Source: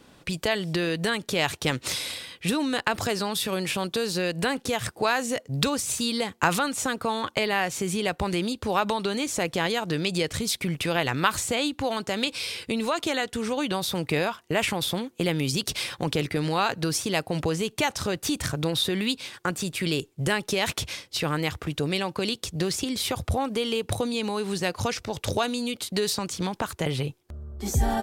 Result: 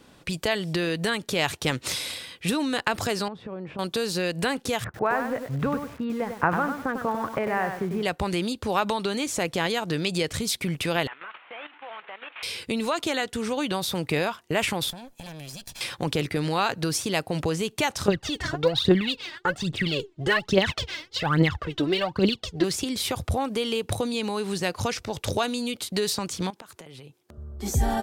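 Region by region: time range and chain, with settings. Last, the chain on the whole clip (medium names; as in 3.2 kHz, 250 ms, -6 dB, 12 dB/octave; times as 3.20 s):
3.28–3.79 s: low-pass 1 kHz + compression 2:1, threshold -36 dBFS
4.84–8.03 s: low-pass 1.8 kHz 24 dB/octave + bit-crushed delay 98 ms, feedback 35%, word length 7-bit, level -6.5 dB
11.07–12.43 s: one-bit delta coder 16 kbps, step -32 dBFS + high-pass 1 kHz + level held to a coarse grid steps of 13 dB
14.90–15.81 s: comb filter that takes the minimum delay 1.2 ms + treble shelf 5.2 kHz +4.5 dB + compression 3:1, threshold -41 dBFS
18.08–22.64 s: low-pass 3.7 kHz + band-stop 2.4 kHz, Q 9.2 + phaser 1.2 Hz, delay 3.3 ms, feedback 77%
26.50–27.38 s: high-pass 150 Hz + compression 20:1, threshold -40 dBFS
whole clip: none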